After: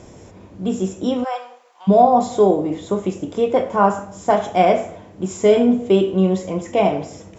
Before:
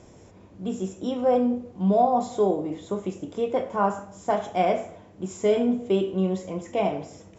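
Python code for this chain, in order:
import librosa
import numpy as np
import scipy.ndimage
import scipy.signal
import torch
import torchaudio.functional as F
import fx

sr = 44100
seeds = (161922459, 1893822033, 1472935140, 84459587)

y = fx.highpass(x, sr, hz=880.0, slope=24, at=(1.23, 1.87), fade=0.02)
y = F.gain(torch.from_numpy(y), 8.0).numpy()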